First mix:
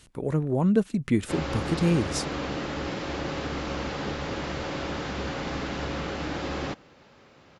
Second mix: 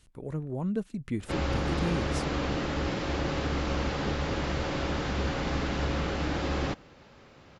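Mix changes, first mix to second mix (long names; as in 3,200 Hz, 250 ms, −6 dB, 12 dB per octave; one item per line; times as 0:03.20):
speech −10.0 dB
master: add low-shelf EQ 73 Hz +11.5 dB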